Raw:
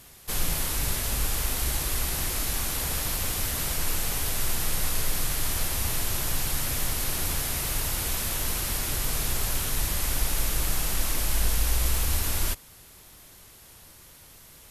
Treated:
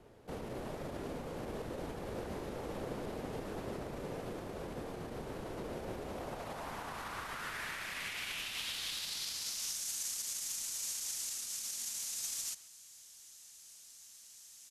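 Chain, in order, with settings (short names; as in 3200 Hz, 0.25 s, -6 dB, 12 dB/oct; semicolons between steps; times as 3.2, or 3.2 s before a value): limiter -21.5 dBFS, peak gain reduction 9 dB; speakerphone echo 0.13 s, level -14 dB; band-pass sweep 750 Hz -> 6900 Hz, 5.97–9.88; frequency shift -290 Hz; low shelf 280 Hz +9.5 dB; gain +3 dB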